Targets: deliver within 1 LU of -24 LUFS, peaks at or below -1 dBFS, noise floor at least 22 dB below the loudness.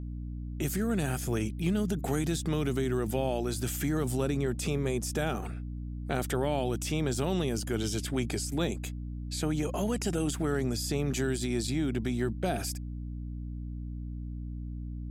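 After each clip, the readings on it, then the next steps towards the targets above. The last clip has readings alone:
hum 60 Hz; harmonics up to 300 Hz; hum level -35 dBFS; loudness -32.0 LUFS; peak -15.5 dBFS; loudness target -24.0 LUFS
-> de-hum 60 Hz, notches 5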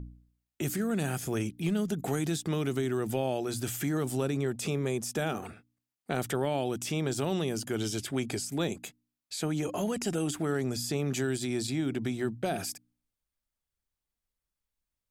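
hum none; loudness -32.0 LUFS; peak -16.0 dBFS; loudness target -24.0 LUFS
-> gain +8 dB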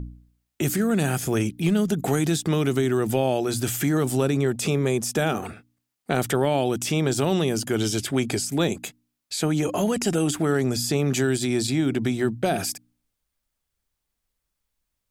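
loudness -24.0 LUFS; peak -8.0 dBFS; noise floor -81 dBFS

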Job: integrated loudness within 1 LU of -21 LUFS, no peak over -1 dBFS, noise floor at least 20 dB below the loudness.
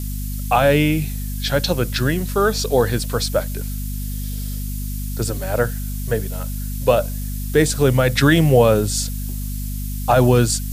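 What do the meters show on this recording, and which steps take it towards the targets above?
hum 50 Hz; harmonics up to 250 Hz; hum level -23 dBFS; noise floor -26 dBFS; noise floor target -40 dBFS; loudness -19.5 LUFS; peak -2.5 dBFS; loudness target -21.0 LUFS
-> notches 50/100/150/200/250 Hz; denoiser 14 dB, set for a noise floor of -26 dBFS; gain -1.5 dB

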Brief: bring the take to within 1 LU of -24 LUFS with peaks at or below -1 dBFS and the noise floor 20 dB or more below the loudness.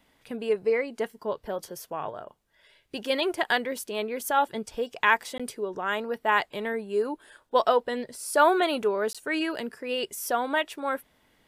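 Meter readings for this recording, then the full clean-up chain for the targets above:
dropouts 2; longest dropout 16 ms; loudness -27.5 LUFS; peak -7.0 dBFS; loudness target -24.0 LUFS
-> interpolate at 5.38/9.13, 16 ms; gain +3.5 dB

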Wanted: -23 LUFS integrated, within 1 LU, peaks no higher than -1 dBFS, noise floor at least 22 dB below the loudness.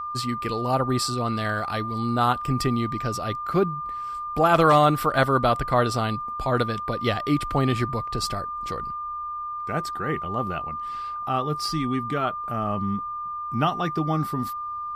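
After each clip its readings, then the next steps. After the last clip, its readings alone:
steady tone 1200 Hz; tone level -29 dBFS; loudness -25.0 LUFS; peak -8.0 dBFS; loudness target -23.0 LUFS
-> notch 1200 Hz, Q 30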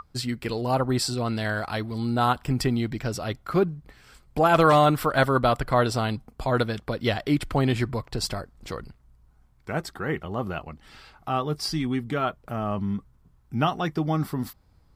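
steady tone none; loudness -25.5 LUFS; peak -8.0 dBFS; loudness target -23.0 LUFS
-> gain +2.5 dB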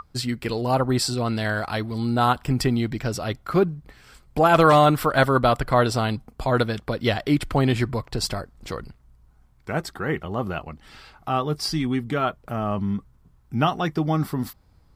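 loudness -23.0 LUFS; peak -5.5 dBFS; noise floor -57 dBFS

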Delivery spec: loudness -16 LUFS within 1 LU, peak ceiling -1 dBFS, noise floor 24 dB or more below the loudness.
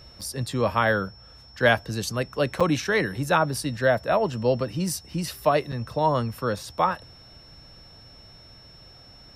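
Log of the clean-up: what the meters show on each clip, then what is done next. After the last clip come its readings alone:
dropouts 3; longest dropout 5.5 ms; steady tone 5400 Hz; tone level -49 dBFS; loudness -25.0 LUFS; peak -6.5 dBFS; loudness target -16.0 LUFS
-> interpolate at 0.21/2.6/5.72, 5.5 ms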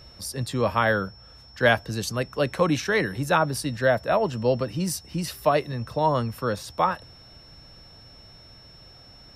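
dropouts 0; steady tone 5400 Hz; tone level -49 dBFS
-> notch 5400 Hz, Q 30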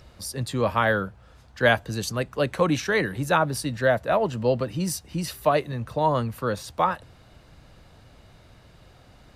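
steady tone none; loudness -25.0 LUFS; peak -6.5 dBFS; loudness target -16.0 LUFS
-> gain +9 dB; limiter -1 dBFS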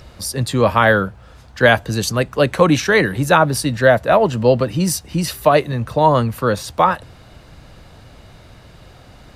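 loudness -16.5 LUFS; peak -1.0 dBFS; noise floor -44 dBFS

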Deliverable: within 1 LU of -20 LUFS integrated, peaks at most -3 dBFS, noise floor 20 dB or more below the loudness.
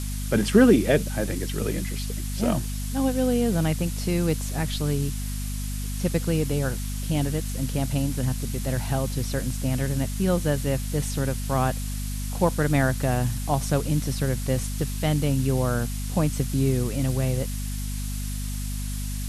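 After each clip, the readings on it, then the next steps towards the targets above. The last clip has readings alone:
hum 50 Hz; harmonics up to 250 Hz; hum level -27 dBFS; noise floor -30 dBFS; noise floor target -46 dBFS; loudness -25.5 LUFS; peak -5.5 dBFS; loudness target -20.0 LUFS
-> de-hum 50 Hz, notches 5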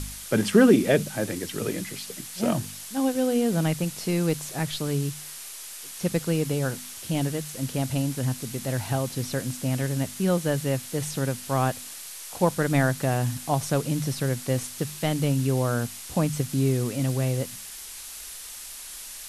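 hum none; noise floor -40 dBFS; noise floor target -46 dBFS
-> denoiser 6 dB, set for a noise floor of -40 dBFS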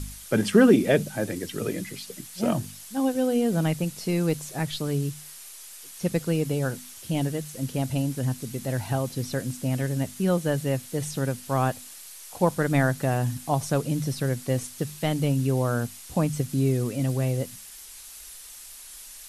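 noise floor -44 dBFS; noise floor target -47 dBFS
-> denoiser 6 dB, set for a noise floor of -44 dBFS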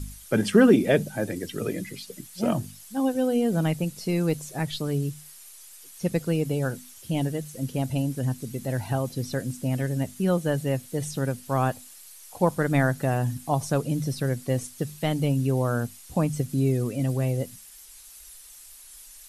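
noise floor -48 dBFS; loudness -26.5 LUFS; peak -7.0 dBFS; loudness target -20.0 LUFS
-> gain +6.5 dB; limiter -3 dBFS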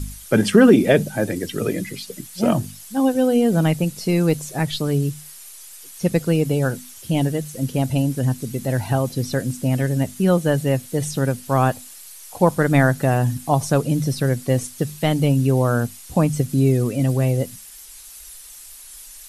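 loudness -20.0 LUFS; peak -3.0 dBFS; noise floor -41 dBFS

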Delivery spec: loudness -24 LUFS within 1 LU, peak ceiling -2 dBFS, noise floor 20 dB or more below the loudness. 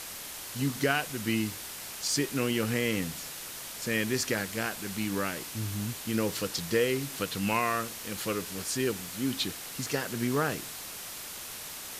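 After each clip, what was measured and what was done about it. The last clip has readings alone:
noise floor -41 dBFS; noise floor target -52 dBFS; loudness -31.5 LUFS; peak -11.5 dBFS; loudness target -24.0 LUFS
-> denoiser 11 dB, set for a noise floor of -41 dBFS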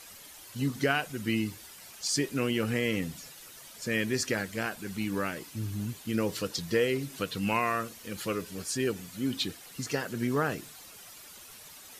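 noise floor -50 dBFS; noise floor target -52 dBFS
-> denoiser 6 dB, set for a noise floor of -50 dBFS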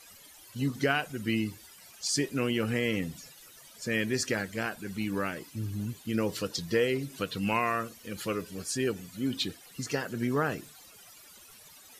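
noise floor -53 dBFS; loudness -31.5 LUFS; peak -11.5 dBFS; loudness target -24.0 LUFS
-> gain +7.5 dB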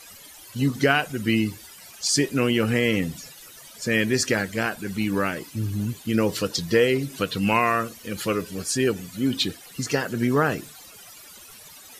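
loudness -24.0 LUFS; peak -4.0 dBFS; noise floor -46 dBFS

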